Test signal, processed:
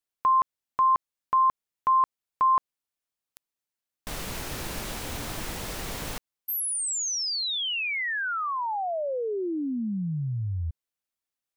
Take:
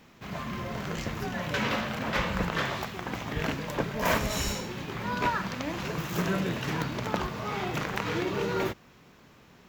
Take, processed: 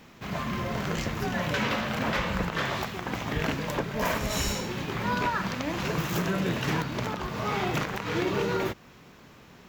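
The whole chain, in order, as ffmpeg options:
ffmpeg -i in.wav -af "alimiter=limit=-21dB:level=0:latency=1:release=258,volume=4dB" out.wav

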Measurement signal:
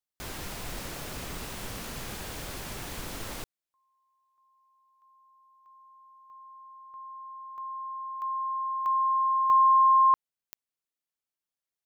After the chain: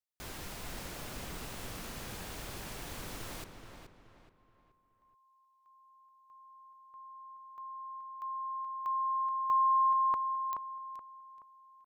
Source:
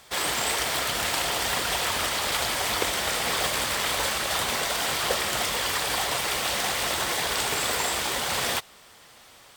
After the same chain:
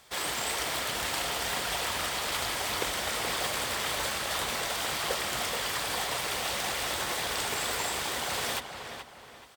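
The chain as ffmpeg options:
ffmpeg -i in.wav -filter_complex "[0:a]asplit=2[link_01][link_02];[link_02]adelay=426,lowpass=frequency=3100:poles=1,volume=-7dB,asplit=2[link_03][link_04];[link_04]adelay=426,lowpass=frequency=3100:poles=1,volume=0.38,asplit=2[link_05][link_06];[link_06]adelay=426,lowpass=frequency=3100:poles=1,volume=0.38,asplit=2[link_07][link_08];[link_08]adelay=426,lowpass=frequency=3100:poles=1,volume=0.38[link_09];[link_01][link_03][link_05][link_07][link_09]amix=inputs=5:normalize=0,volume=-5.5dB" out.wav

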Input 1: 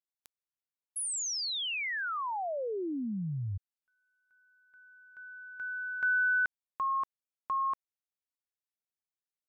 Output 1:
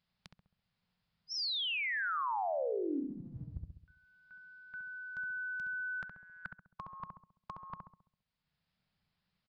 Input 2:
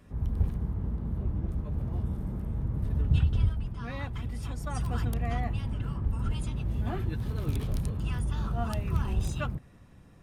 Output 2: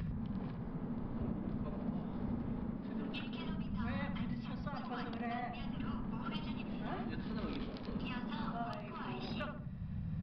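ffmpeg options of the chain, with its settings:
ffmpeg -i in.wav -filter_complex "[0:a]lowshelf=frequency=240:width_type=q:width=3:gain=9.5,aresample=11025,aresample=44100,afftfilt=real='re*lt(hypot(re,im),0.282)':imag='im*lt(hypot(re,im),0.282)':win_size=1024:overlap=0.75,acompressor=threshold=-49dB:ratio=12:attack=0.15:release=876:detection=rms,asplit=2[link_01][link_02];[link_02]adelay=67,lowpass=frequency=1100:poles=1,volume=-3dB,asplit=2[link_03][link_04];[link_04]adelay=67,lowpass=frequency=1100:poles=1,volume=0.53,asplit=2[link_05][link_06];[link_06]adelay=67,lowpass=frequency=1100:poles=1,volume=0.53,asplit=2[link_07][link_08];[link_08]adelay=67,lowpass=frequency=1100:poles=1,volume=0.53,asplit=2[link_09][link_10];[link_10]adelay=67,lowpass=frequency=1100:poles=1,volume=0.53,asplit=2[link_11][link_12];[link_12]adelay=67,lowpass=frequency=1100:poles=1,volume=0.53,asplit=2[link_13][link_14];[link_14]adelay=67,lowpass=frequency=1100:poles=1,volume=0.53[link_15];[link_03][link_05][link_07][link_09][link_11][link_13][link_15]amix=inputs=7:normalize=0[link_16];[link_01][link_16]amix=inputs=2:normalize=0,volume=15dB" out.wav

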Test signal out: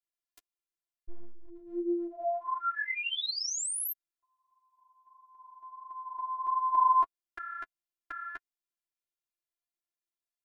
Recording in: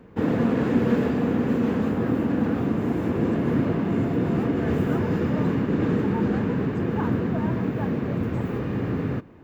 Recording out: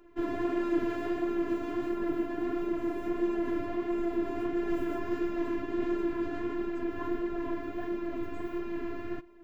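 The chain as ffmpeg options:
ffmpeg -i in.wav -af "afftfilt=real='hypot(re,im)*cos(PI*b)':imag='0':win_size=512:overlap=0.75,flanger=delay=5:depth=5.5:regen=12:speed=1.5:shape=sinusoidal" out.wav

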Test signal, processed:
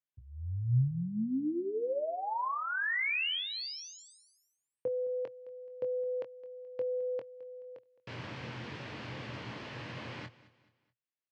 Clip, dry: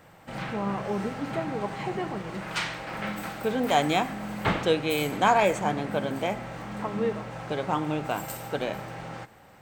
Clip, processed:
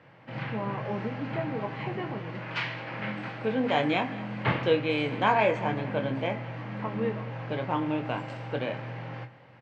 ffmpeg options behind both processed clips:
ffmpeg -i in.wav -filter_complex "[0:a]highpass=frequency=110:width=0.5412,highpass=frequency=110:width=1.3066,equalizer=frequency=120:width_type=q:width=4:gain=8,equalizer=frequency=180:width_type=q:width=4:gain=-6,equalizer=frequency=390:width_type=q:width=4:gain=-4,equalizer=frequency=740:width_type=q:width=4:gain=-6,equalizer=frequency=1300:width_type=q:width=4:gain=-5,equalizer=frequency=3700:width_type=q:width=4:gain=-6,lowpass=frequency=3900:width=0.5412,lowpass=frequency=3900:width=1.3066,asplit=2[link_01][link_02];[link_02]adelay=23,volume=-8dB[link_03];[link_01][link_03]amix=inputs=2:normalize=0,aecho=1:1:214|428|642:0.112|0.0438|0.0171" out.wav

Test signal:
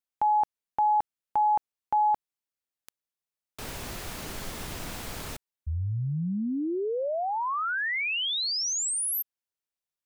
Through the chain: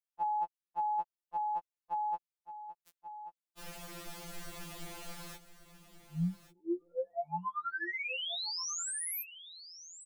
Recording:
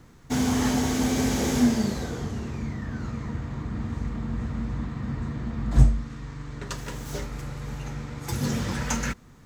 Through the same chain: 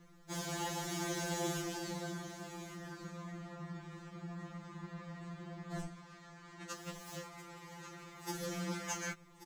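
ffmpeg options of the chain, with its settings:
ffmpeg -i in.wav -af "asoftclip=type=tanh:threshold=-14dB,aecho=1:1:1136:0.211,afftfilt=real='re*2.83*eq(mod(b,8),0)':imag='im*2.83*eq(mod(b,8),0)':win_size=2048:overlap=0.75,volume=-6.5dB" out.wav

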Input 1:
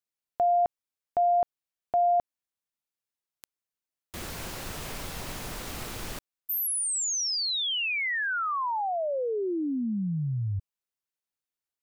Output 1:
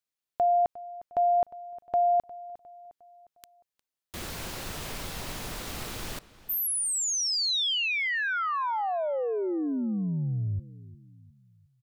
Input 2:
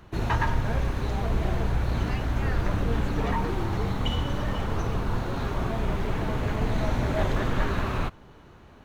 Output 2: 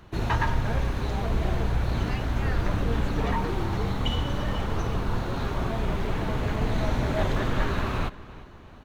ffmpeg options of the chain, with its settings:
ffmpeg -i in.wav -filter_complex "[0:a]equalizer=frequency=3800:width=1.5:gain=2,asplit=2[link_01][link_02];[link_02]adelay=356,lowpass=frequency=4800:poles=1,volume=-18dB,asplit=2[link_03][link_04];[link_04]adelay=356,lowpass=frequency=4800:poles=1,volume=0.46,asplit=2[link_05][link_06];[link_06]adelay=356,lowpass=frequency=4800:poles=1,volume=0.46,asplit=2[link_07][link_08];[link_08]adelay=356,lowpass=frequency=4800:poles=1,volume=0.46[link_09];[link_01][link_03][link_05][link_07][link_09]amix=inputs=5:normalize=0" out.wav

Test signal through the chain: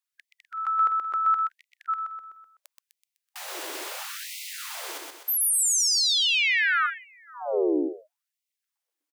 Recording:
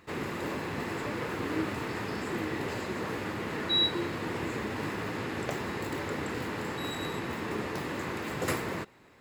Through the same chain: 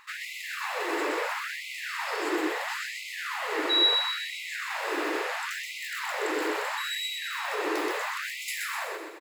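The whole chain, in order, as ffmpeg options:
ffmpeg -i in.wav -filter_complex "[0:a]asplit=2[link_01][link_02];[link_02]alimiter=level_in=3.5dB:limit=-24dB:level=0:latency=1,volume=-3.5dB,volume=3dB[link_03];[link_01][link_03]amix=inputs=2:normalize=0,aecho=1:1:126|252|378|504|630|756:0.668|0.321|0.154|0.0739|0.0355|0.017,afftfilt=real='re*gte(b*sr/1024,260*pow(2000/260,0.5+0.5*sin(2*PI*0.74*pts/sr)))':imag='im*gte(b*sr/1024,260*pow(2000/260,0.5+0.5*sin(2*PI*0.74*pts/sr)))':win_size=1024:overlap=0.75,volume=-1.5dB" out.wav

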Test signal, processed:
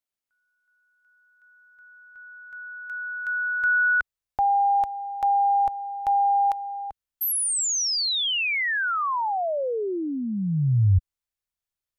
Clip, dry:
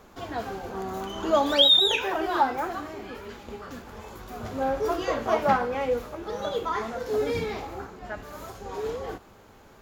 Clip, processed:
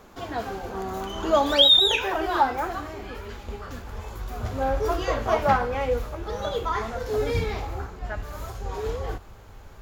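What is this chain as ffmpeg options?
ffmpeg -i in.wav -af "asubboost=boost=5.5:cutoff=94,volume=2dB" out.wav

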